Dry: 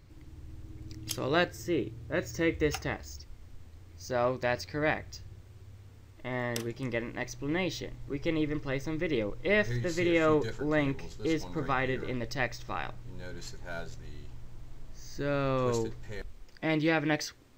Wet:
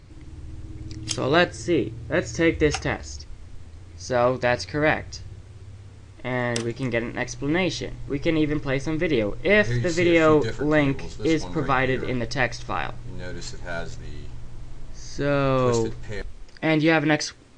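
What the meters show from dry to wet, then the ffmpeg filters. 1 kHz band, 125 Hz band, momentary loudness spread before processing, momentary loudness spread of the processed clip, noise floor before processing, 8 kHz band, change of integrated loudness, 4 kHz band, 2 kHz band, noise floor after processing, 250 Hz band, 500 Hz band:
+8.0 dB, +8.0 dB, 20 LU, 20 LU, -52 dBFS, +8.0 dB, +8.0 dB, +8.0 dB, +8.0 dB, -44 dBFS, +8.0 dB, +8.0 dB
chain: -af "acontrast=29,volume=1.5" -ar 22050 -c:a libmp3lame -b:a 56k

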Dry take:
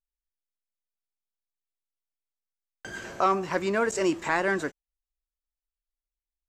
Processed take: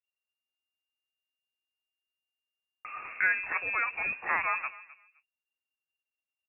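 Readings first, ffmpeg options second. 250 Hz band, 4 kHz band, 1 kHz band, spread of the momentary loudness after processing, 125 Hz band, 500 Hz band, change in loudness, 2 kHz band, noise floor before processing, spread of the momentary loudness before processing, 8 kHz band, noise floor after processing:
-25.5 dB, under -15 dB, -6.0 dB, 16 LU, under -15 dB, -20.0 dB, -2.5 dB, +3.0 dB, under -85 dBFS, 14 LU, under -35 dB, under -85 dBFS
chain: -filter_complex "[0:a]acrossover=split=250|620|1800[s0][s1][s2][s3];[s1]acompressor=threshold=0.0112:ratio=6[s4];[s0][s4][s2][s3]amix=inputs=4:normalize=0,asplit=2[s5][s6];[s6]adelay=259,lowpass=f=1300:p=1,volume=0.15,asplit=2[s7][s8];[s8]adelay=259,lowpass=f=1300:p=1,volume=0.23[s9];[s5][s7][s9]amix=inputs=3:normalize=0,lowpass=f=2400:t=q:w=0.5098,lowpass=f=2400:t=q:w=0.6013,lowpass=f=2400:t=q:w=0.9,lowpass=f=2400:t=q:w=2.563,afreqshift=-2800,volume=0.794"

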